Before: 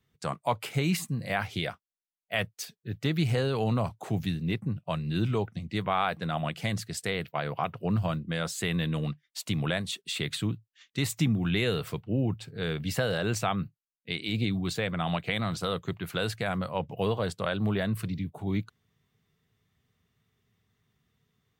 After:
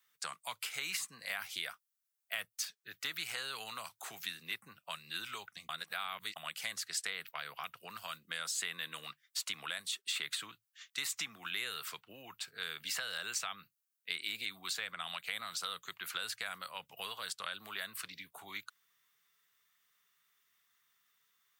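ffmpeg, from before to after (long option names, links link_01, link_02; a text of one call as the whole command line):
ffmpeg -i in.wav -filter_complex "[0:a]asplit=3[link_01][link_02][link_03];[link_01]atrim=end=5.692[link_04];[link_02]atrim=start=5.688:end=6.362,asetpts=PTS-STARTPTS,areverse[link_05];[link_03]atrim=start=6.358[link_06];[link_04][link_05]acrossfade=duration=0.004:curve1=hsin:curve2=hsin[link_07];[link_07][link_06]acrossfade=duration=0.004:curve1=hsin:curve2=hsin,equalizer=frequency=1300:width=0.98:gain=12,acrossover=split=250|790|2300|7600[link_08][link_09][link_10][link_11][link_12];[link_08]acompressor=threshold=-37dB:ratio=4[link_13];[link_09]acompressor=threshold=-40dB:ratio=4[link_14];[link_10]acompressor=threshold=-39dB:ratio=4[link_15];[link_11]acompressor=threshold=-39dB:ratio=4[link_16];[link_12]acompressor=threshold=-59dB:ratio=4[link_17];[link_13][link_14][link_15][link_16][link_17]amix=inputs=5:normalize=0,aderivative,volume=6.5dB" out.wav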